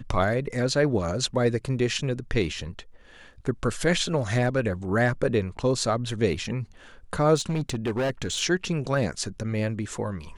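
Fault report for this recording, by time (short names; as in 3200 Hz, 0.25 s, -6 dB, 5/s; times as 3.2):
7.36–8.42 clipped -22.5 dBFS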